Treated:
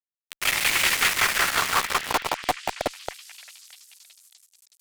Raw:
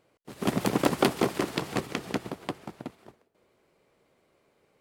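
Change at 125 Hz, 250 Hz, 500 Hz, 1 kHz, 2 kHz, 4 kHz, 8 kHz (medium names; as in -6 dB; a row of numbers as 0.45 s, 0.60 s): -8.0 dB, -11.5 dB, -3.5 dB, +7.5 dB, +14.5 dB, +12.5 dB, +14.5 dB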